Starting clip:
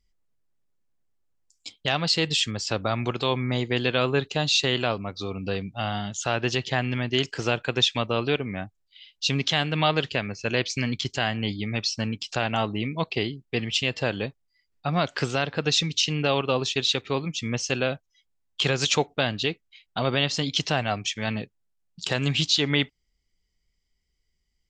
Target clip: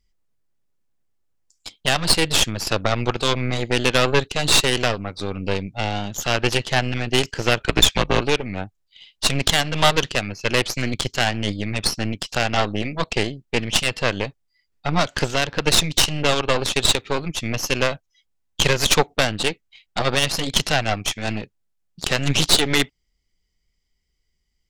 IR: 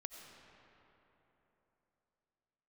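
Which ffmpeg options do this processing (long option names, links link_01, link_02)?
-filter_complex "[0:a]asplit=3[link_01][link_02][link_03];[link_01]afade=type=out:start_time=7.59:duration=0.02[link_04];[link_02]afreqshift=-68,afade=type=in:start_time=7.59:duration=0.02,afade=type=out:start_time=8.2:duration=0.02[link_05];[link_03]afade=type=in:start_time=8.2:duration=0.02[link_06];[link_04][link_05][link_06]amix=inputs=3:normalize=0,aeval=exprs='0.447*(cos(1*acos(clip(val(0)/0.447,-1,1)))-cos(1*PI/2))+0.1*(cos(6*acos(clip(val(0)/0.447,-1,1)))-cos(6*PI/2))+0.0178*(cos(7*acos(clip(val(0)/0.447,-1,1)))-cos(7*PI/2))':channel_layout=same,volume=5.5dB"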